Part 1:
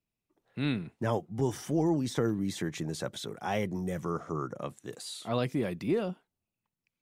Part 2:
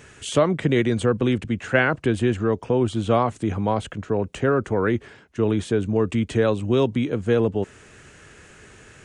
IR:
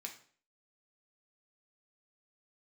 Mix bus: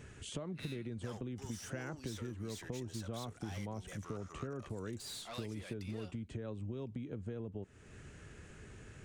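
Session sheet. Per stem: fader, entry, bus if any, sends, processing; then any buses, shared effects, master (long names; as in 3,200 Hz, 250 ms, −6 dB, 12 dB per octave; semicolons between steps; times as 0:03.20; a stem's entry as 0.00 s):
−2.0 dB, 0.00 s, no send, meter weighting curve ITU-R 468; tube saturation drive 34 dB, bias 0.4
−11.5 dB, 0.00 s, send −18 dB, low-shelf EQ 300 Hz +12 dB; downward compressor, threshold −16 dBFS, peak gain reduction 8.5 dB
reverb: on, RT60 0.50 s, pre-delay 3 ms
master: downward compressor 2 to 1, threshold −48 dBFS, peak gain reduction 12.5 dB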